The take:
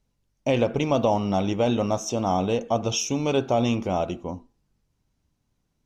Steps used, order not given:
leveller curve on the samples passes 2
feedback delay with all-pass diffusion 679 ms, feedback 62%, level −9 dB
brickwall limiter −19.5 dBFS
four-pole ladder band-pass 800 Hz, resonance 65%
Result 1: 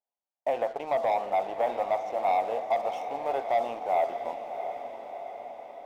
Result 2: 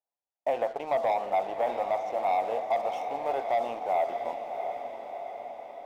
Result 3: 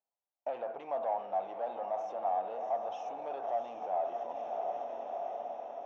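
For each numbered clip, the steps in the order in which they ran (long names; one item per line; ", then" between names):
four-pole ladder band-pass, then leveller curve on the samples, then brickwall limiter, then feedback delay with all-pass diffusion
four-pole ladder band-pass, then leveller curve on the samples, then feedback delay with all-pass diffusion, then brickwall limiter
leveller curve on the samples, then feedback delay with all-pass diffusion, then brickwall limiter, then four-pole ladder band-pass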